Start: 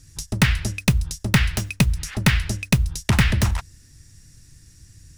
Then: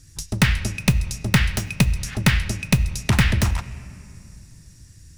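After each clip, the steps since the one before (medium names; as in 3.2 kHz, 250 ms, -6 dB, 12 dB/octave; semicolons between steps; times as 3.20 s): on a send at -16 dB: fifteen-band graphic EQ 2.5 kHz +7 dB, 6.3 kHz +6 dB, 16 kHz -11 dB + reverberation RT60 2.8 s, pre-delay 6 ms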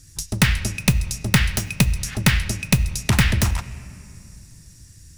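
treble shelf 5.7 kHz +6 dB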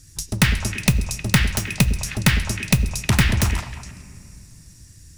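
repeats whose band climbs or falls 104 ms, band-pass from 320 Hz, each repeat 1.4 oct, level -5 dB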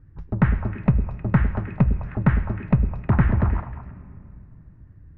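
low-pass 1.4 kHz 24 dB/octave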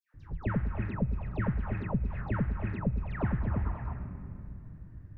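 compression 6:1, threshold -27 dBFS, peak gain reduction 15 dB; phase dispersion lows, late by 143 ms, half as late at 1.6 kHz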